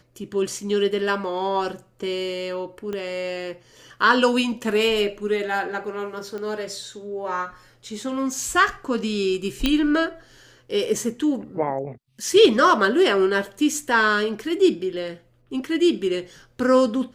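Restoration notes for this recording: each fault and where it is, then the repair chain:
2.93 pop -18 dBFS
6.38 pop -22 dBFS
9.66 pop -7 dBFS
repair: de-click

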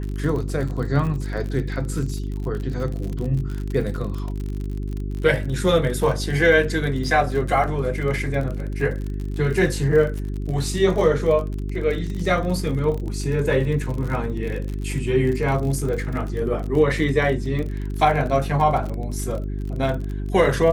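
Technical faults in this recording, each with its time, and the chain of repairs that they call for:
crackle 42/s -28 dBFS
hum 50 Hz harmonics 8 -27 dBFS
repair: de-click; de-hum 50 Hz, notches 8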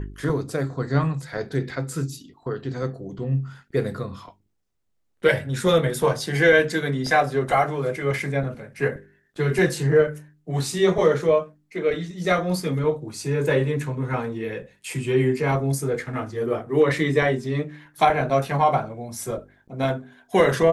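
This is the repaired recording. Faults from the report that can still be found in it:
none

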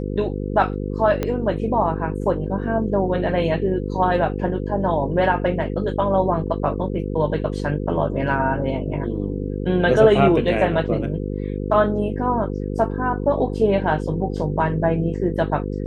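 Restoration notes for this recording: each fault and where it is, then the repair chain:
buzz 50 Hz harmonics 10 -26 dBFS
1.23 pop -10 dBFS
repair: de-click; de-hum 50 Hz, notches 10

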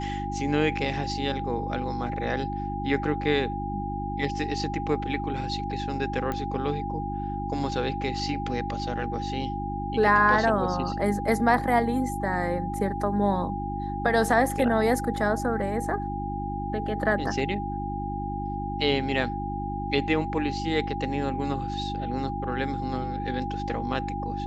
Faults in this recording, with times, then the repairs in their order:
hum 50 Hz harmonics 7 -33 dBFS
tone 810 Hz -32 dBFS
6.32 pop -17 dBFS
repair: de-click; de-hum 50 Hz, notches 7; notch 810 Hz, Q 30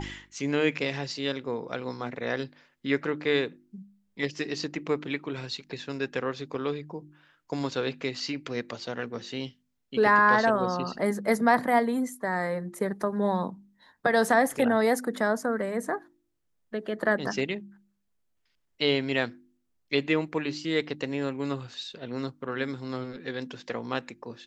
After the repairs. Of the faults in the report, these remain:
none

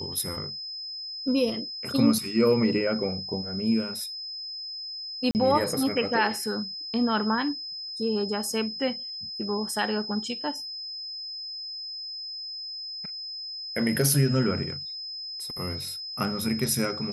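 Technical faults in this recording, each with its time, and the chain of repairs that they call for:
tone 5100 Hz -34 dBFS
5.31–5.35 gap 39 ms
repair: notch 5100 Hz, Q 30; interpolate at 5.31, 39 ms

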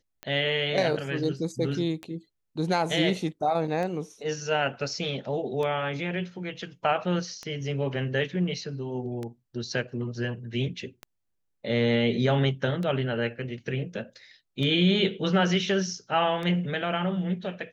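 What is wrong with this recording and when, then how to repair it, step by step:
tick 33 1/3 rpm -21 dBFS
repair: de-click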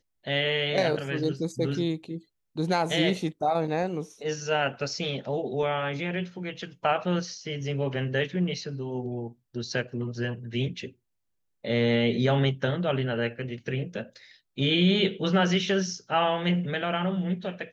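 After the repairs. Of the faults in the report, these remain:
none

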